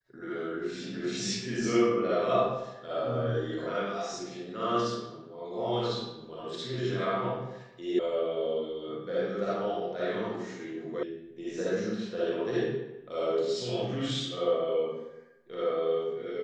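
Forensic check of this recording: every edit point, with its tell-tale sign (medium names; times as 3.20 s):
7.99 s: sound stops dead
11.03 s: sound stops dead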